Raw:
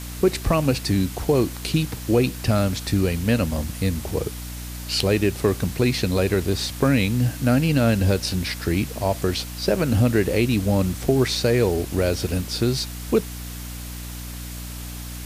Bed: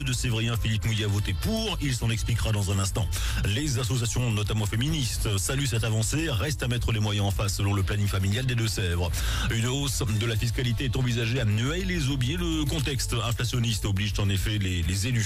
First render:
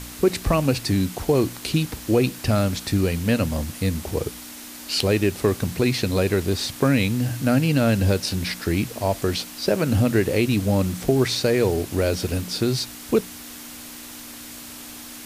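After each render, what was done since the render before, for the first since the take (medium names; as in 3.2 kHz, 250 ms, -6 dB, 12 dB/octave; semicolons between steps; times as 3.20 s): de-hum 60 Hz, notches 3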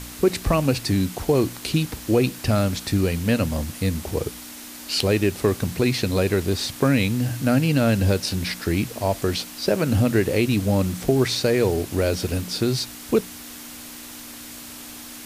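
no audible change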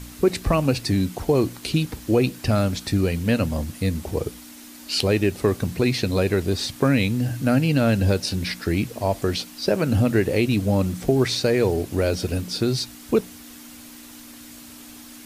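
noise reduction 6 dB, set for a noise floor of -39 dBFS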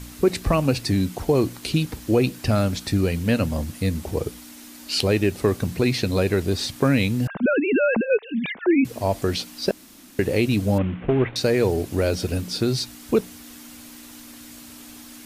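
7.27–8.85 s: formants replaced by sine waves; 9.71–10.19 s: room tone; 10.78–11.36 s: CVSD coder 16 kbps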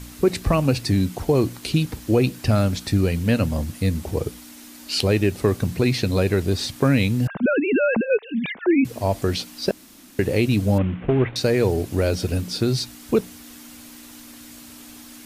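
dynamic bell 110 Hz, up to +3 dB, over -33 dBFS, Q 1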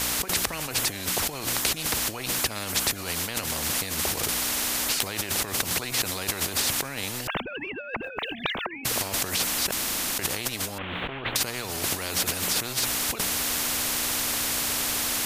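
compressor with a negative ratio -29 dBFS, ratio -1; spectrum-flattening compressor 4:1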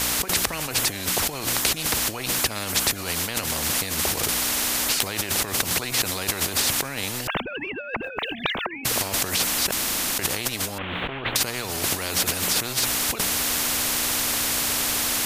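trim +3 dB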